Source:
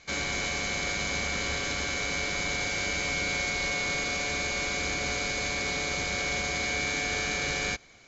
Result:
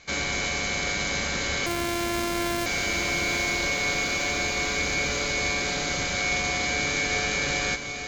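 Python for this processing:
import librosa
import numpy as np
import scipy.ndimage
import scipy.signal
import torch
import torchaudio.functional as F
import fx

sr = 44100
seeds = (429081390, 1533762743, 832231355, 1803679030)

y = fx.sample_sort(x, sr, block=128, at=(1.66, 2.66))
y = fx.echo_diffused(y, sr, ms=927, feedback_pct=51, wet_db=-8.5)
y = y * librosa.db_to_amplitude(3.0)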